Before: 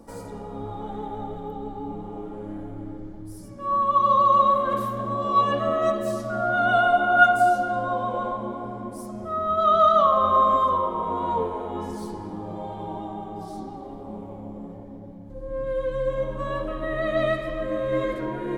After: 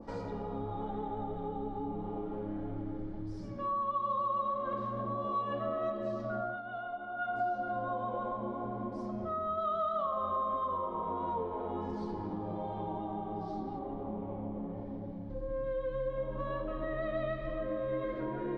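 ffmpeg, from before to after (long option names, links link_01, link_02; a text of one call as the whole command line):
ffmpeg -i in.wav -filter_complex "[0:a]asettb=1/sr,asplit=3[link_01][link_02][link_03];[link_01]atrim=end=13.794[link_04];[link_02]atrim=start=13.79:end=14.77,asetpts=PTS-STARTPTS,afade=type=in:duration=0.004:curve=qsin,afade=type=out:start_time=0.976:duration=0.004:curve=qsin,lowpass=3100[link_05];[link_03]atrim=start=14.766[link_06];[link_04][link_05]acrossfade=duration=0.004:curve1=hsin:curve2=qsin[link_07];[link_07][link_06]acrossfade=duration=0.004:curve1=qsin:curve2=hsin,asettb=1/sr,asplit=3[link_08][link_09][link_10];[link_08]atrim=end=16.924[link_11];[link_09]atrim=start=16.92:end=17.5,asetpts=PTS-STARTPTS,afade=type=in:duration=0.004:curve=qsin,afade=type=out:start_time=0.576:duration=0.004:curve=qsin,asubboost=boost=7:cutoff=180[link_12];[link_10]atrim=start=17.496[link_13];[link_11][link_12]acrossfade=duration=0.004:curve1=hsin:curve2=qsin[link_14];[link_14][link_13]acrossfade=duration=0.004:curve1=qsin:curve2=hsin,asplit=3[link_15][link_16][link_17];[link_15]atrim=end=6.62,asetpts=PTS-STARTPTS,afade=type=out:start_time=6.37:duration=0.25:silence=0.112202[link_18];[link_16]atrim=start=6.62:end=7.19,asetpts=PTS-STARTPTS,volume=-19dB[link_19];[link_17]atrim=start=7.19,asetpts=PTS-STARTPTS,afade=type=in:duration=0.25:silence=0.112202[link_20];[link_18][link_19][link_20]concat=n=3:v=0:a=1,lowpass=frequency=4800:width=0.5412,lowpass=frequency=4800:width=1.3066,acompressor=threshold=-35dB:ratio=3,adynamicequalizer=threshold=0.00398:dfrequency=1700:dqfactor=0.7:tfrequency=1700:tqfactor=0.7:attack=5:release=100:ratio=0.375:range=3:mode=cutabove:tftype=highshelf" out.wav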